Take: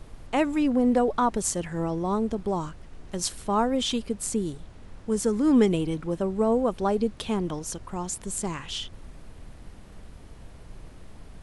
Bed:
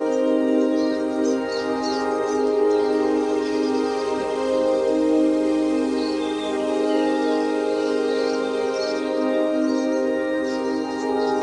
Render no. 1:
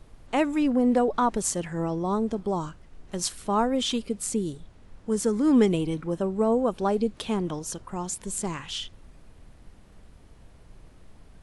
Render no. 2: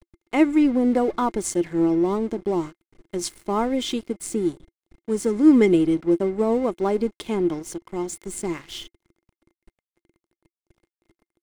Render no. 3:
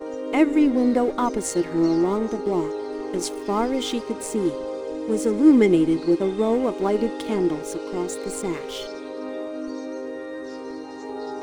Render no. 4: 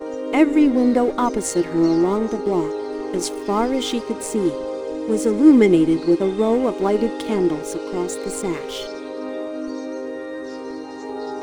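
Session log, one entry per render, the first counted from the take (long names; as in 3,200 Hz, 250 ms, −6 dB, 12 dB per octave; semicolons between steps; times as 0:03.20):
noise reduction from a noise print 6 dB
dead-zone distortion −42 dBFS; hollow resonant body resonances 340/2,100 Hz, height 15 dB, ringing for 60 ms
mix in bed −10.5 dB
level +3 dB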